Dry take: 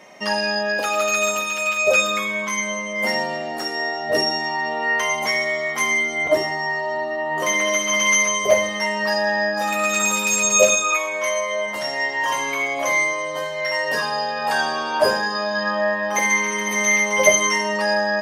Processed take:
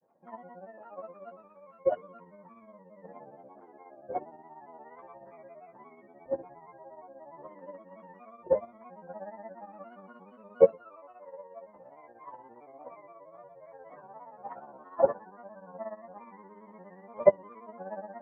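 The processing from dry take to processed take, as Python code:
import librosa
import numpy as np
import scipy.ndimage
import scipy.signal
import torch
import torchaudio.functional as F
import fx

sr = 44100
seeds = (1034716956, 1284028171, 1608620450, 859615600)

y = scipy.signal.sosfilt(scipy.signal.butter(4, 1100.0, 'lowpass', fs=sr, output='sos'), x)
y = fx.granulator(y, sr, seeds[0], grain_ms=100.0, per_s=17.0, spray_ms=21.0, spread_st=3)
y = fx.upward_expand(y, sr, threshold_db=-26.0, expansion=2.5)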